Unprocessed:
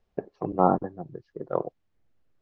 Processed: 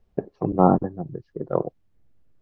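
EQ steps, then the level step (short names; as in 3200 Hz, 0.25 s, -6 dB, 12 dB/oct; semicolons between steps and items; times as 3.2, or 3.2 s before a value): low shelf 390 Hz +10 dB; 0.0 dB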